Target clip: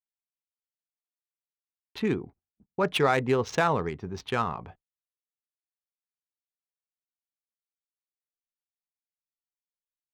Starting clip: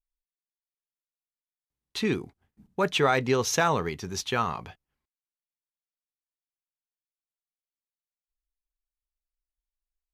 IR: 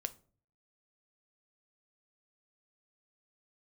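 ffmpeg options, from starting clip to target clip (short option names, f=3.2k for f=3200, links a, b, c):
-filter_complex "[0:a]agate=range=-30dB:threshold=-52dB:ratio=16:detection=peak,acrossover=split=1100[a][b];[b]adynamicsmooth=sensitivity=2.5:basefreq=1.4k[c];[a][c]amix=inputs=2:normalize=0"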